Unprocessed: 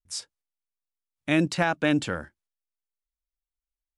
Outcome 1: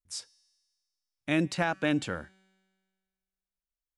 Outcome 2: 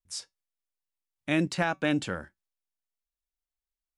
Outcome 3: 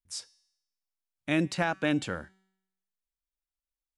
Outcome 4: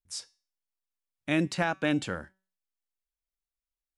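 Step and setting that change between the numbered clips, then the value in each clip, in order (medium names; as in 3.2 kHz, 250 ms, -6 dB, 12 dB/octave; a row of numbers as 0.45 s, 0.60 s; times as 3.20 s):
feedback comb, decay: 1.7 s, 0.16 s, 0.84 s, 0.39 s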